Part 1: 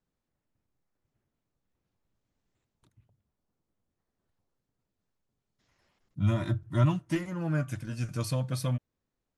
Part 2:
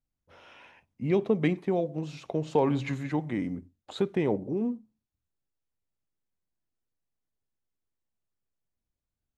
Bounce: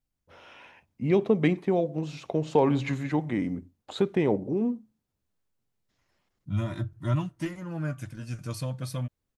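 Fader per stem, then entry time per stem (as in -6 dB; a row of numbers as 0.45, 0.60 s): -2.5, +2.5 dB; 0.30, 0.00 s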